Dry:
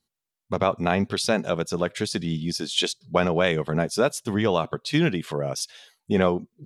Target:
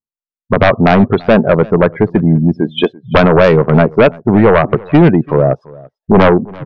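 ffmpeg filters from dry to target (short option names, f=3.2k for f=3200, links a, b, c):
-af "lowpass=1.4k,afftdn=nr=35:nf=-37,aeval=exprs='0.531*sin(PI/2*3.55*val(0)/0.531)':c=same,aecho=1:1:338:0.0708,volume=3.5dB"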